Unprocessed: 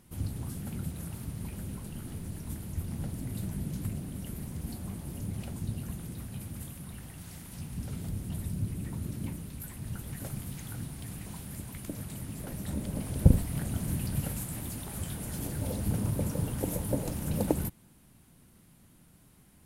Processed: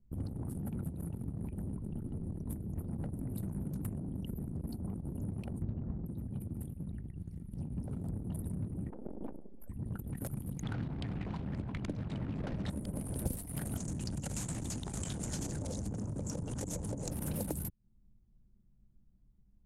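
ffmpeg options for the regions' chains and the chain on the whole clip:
-filter_complex "[0:a]asettb=1/sr,asplit=3[a][b][c];[a]atrim=end=5.624[d];[b]atrim=start=5.62:end=6.06,asetpts=PTS-STARTPTS,afade=t=in:d=0.004:c=qsin,afade=t=out:st=0.436:d=0.004:c=qsin,lowpass=f=1.2k:p=1,lowshelf=f=120:g=11.5[e];[c]atrim=start=6.056[f];[d][e]acrossfade=d=0.004:c1=hsin:c2=qsin[g];[g][f]acrossfade=d=0.004:c1=qsin:c2=hsin,asettb=1/sr,asplit=3[h][i][j];[h]atrim=end=8.904[k];[i]atrim=start=8.9:end=9.69,asetpts=PTS-STARTPTS,afade=t=in:d=0.004:c=qsin,afade=t=out:st=0.786:d=0.004:c=qsin,highpass=f=220:w=0.5412,highpass=f=220:w=1.3066,equalizer=f=600:t=o:w=1.3:g=13.5,aeval=exprs='max(val(0),0)':c=same[l];[j]atrim=start=9.686[m];[k][l]acrossfade=d=0.004:c1=hsin:c2=qsin[n];[n][m]acrossfade=d=0.004:c1=qsin:c2=hsin,asettb=1/sr,asplit=3[o][p][q];[o]atrim=end=10.634[r];[p]atrim=start=10.63:end=12.7,asetpts=PTS-STARTPTS,afade=t=in:d=0.004:c=qsin,afade=t=out:st=2.066:d=0.004:c=qsin,lowpass=4k,acontrast=83[s];[q]atrim=start=12.696[t];[r][s]acrossfade=d=0.004:c1=hsin:c2=qsin[u];[u][t]acrossfade=d=0.004:c1=qsin:c2=hsin,asettb=1/sr,asplit=3[v][w][x];[v]atrim=end=13.774[y];[w]atrim=start=13.77:end=17.11,asetpts=PTS-STARTPTS,afade=t=in:d=0.004:c=qsin,afade=t=out:st=3.336:d=0.004:c=qsin,acompressor=threshold=-31dB:ratio=4:attack=3.2:release=140:knee=1:detection=peak,lowpass=f=6.9k:t=q:w=3.1[z];[x]atrim=start=17.106[aa];[y][z]acrossfade=d=0.004:c1=hsin:c2=qsin[ab];[ab][aa]acrossfade=d=0.004:c1=qsin:c2=hsin,anlmdn=0.631,acrossover=split=220|4700[ac][ad][ae];[ac]acompressor=threshold=-47dB:ratio=4[af];[ad]acompressor=threshold=-50dB:ratio=4[ag];[ae]acompressor=threshold=-50dB:ratio=4[ah];[af][ag][ah]amix=inputs=3:normalize=0,volume=7dB"

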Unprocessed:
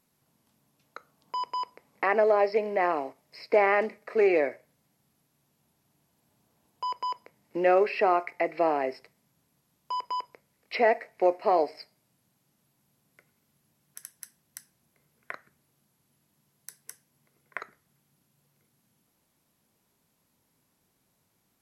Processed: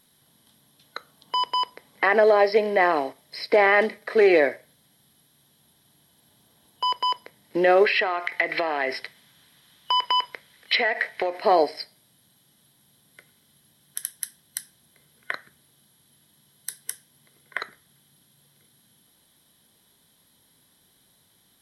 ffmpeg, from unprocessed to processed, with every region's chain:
-filter_complex "[0:a]asettb=1/sr,asplit=3[a][b][c];[a]atrim=end=7.854[d];[b]atrim=start=7.85:end=11.4,asetpts=PTS-STARTPTS,afade=t=in:d=0.004:c=qsin,afade=t=out:st=3.546:d=0.004:c=qsin,equalizer=f=2.1k:w=0.55:g=10.5,acompressor=threshold=-27dB:ratio=10:attack=3.2:release=140:knee=1:detection=peak[e];[c]atrim=start=11.396[f];[d][e]acrossfade=d=0.004:c1=hsin:c2=qsin[g];[g][f]acrossfade=d=0.004:c1=qsin:c2=hsin,superequalizer=11b=1.78:13b=3.98:14b=1.58:16b=2.51,alimiter=level_in=14dB:limit=-1dB:release=50:level=0:latency=1,volume=-7.5dB"

